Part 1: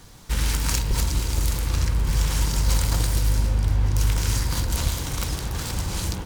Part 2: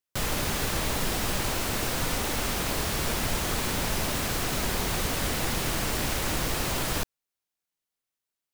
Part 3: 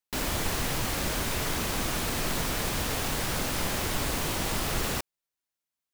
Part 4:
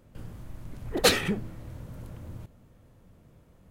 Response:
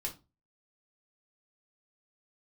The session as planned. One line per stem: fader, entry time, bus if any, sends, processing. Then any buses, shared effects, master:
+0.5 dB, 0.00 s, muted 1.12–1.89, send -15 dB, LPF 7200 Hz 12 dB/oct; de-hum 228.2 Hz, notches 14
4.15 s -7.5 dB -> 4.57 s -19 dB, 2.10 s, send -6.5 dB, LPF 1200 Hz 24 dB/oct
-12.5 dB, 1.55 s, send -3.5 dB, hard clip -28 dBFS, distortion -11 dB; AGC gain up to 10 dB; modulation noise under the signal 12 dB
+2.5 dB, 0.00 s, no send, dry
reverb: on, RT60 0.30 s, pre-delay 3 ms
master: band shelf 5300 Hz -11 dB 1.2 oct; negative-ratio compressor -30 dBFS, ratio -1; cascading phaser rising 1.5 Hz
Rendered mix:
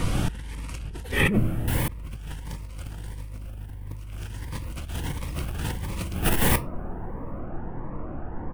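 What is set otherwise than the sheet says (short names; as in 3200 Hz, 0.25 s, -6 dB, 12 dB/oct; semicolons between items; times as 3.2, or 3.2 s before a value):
stem 1 +0.5 dB -> +9.0 dB; stem 3: missing modulation noise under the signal 12 dB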